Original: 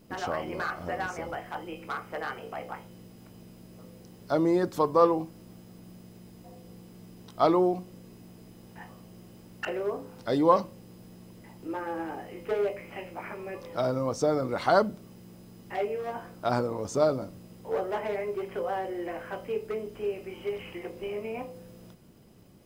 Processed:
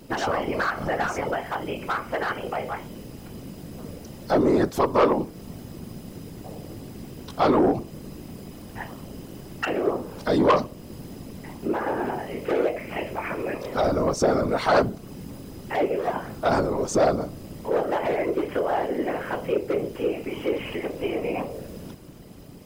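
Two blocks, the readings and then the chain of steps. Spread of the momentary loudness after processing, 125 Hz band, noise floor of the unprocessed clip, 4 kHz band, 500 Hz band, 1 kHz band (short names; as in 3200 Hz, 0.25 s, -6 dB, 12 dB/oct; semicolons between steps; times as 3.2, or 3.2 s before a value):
19 LU, +6.0 dB, -52 dBFS, +7.0 dB, +4.5 dB, +4.5 dB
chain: in parallel at -1 dB: compressor, threshold -38 dBFS, peak gain reduction 21 dB; on the sum: whisperiser; soft clip -17 dBFS, distortion -14 dB; gain +5 dB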